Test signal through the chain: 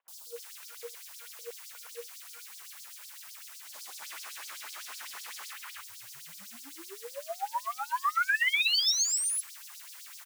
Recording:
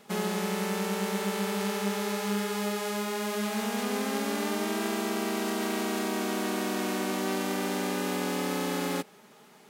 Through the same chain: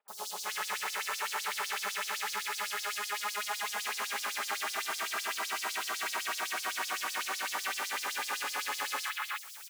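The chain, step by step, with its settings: treble shelf 6.4 kHz -4 dB; in parallel at -11 dB: saturation -36 dBFS; on the sum: resampled via 32 kHz; word length cut 8-bit, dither triangular; three bands offset in time lows, highs, mids 80/360 ms, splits 940/3700 Hz; LFO high-pass sine 7.9 Hz 940–5300 Hz

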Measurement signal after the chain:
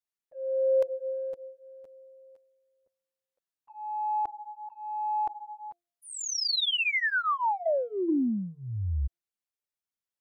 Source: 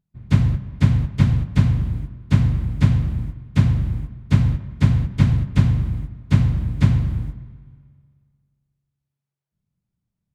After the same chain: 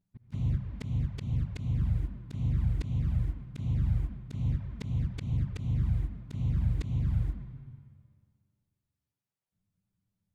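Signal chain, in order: de-hum 347.4 Hz, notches 2; touch-sensitive flanger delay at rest 10.4 ms, full sweep at -12.5 dBFS; slow attack 513 ms

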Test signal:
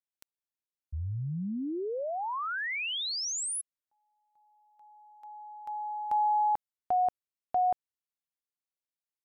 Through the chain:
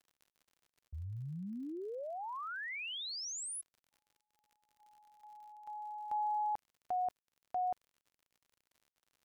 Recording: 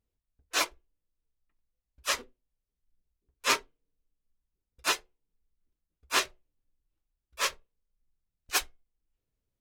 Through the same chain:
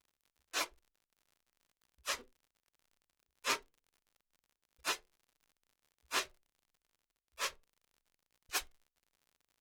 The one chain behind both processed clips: expander -57 dBFS, range -7 dB; crackle 75 per s -47 dBFS; trim -8.5 dB

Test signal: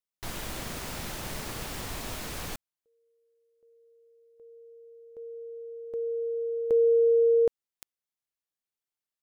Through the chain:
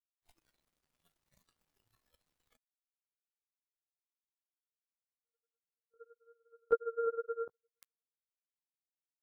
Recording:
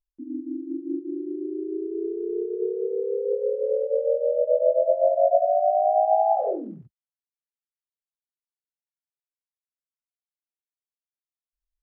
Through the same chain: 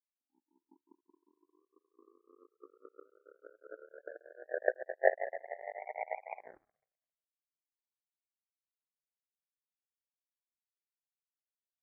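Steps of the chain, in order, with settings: chorus voices 4, 0.81 Hz, delay 16 ms, depth 4.7 ms; two-band feedback delay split 640 Hz, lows 351 ms, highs 256 ms, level -14 dB; power-law waveshaper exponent 3; spectral noise reduction 11 dB

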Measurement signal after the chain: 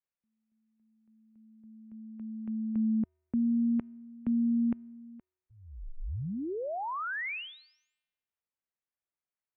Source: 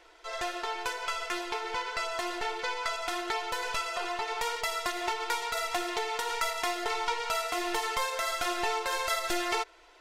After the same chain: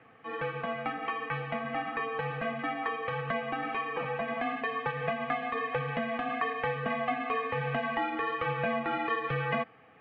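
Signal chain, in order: feedback comb 290 Hz, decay 1.1 s, mix 40%; mistuned SSB -210 Hz 190–2800 Hz; trim +5 dB

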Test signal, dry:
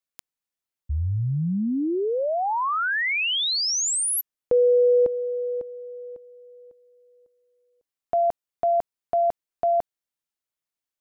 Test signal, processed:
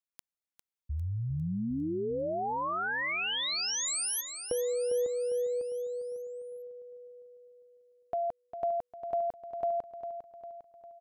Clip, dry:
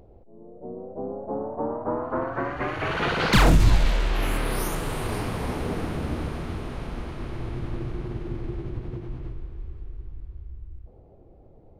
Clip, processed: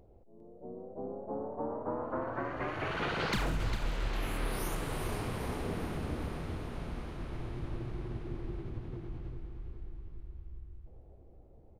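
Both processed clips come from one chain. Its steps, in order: compression 10:1, threshold -21 dBFS; on a send: feedback delay 402 ms, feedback 51%, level -9.5 dB; on the sum: trim -8 dB

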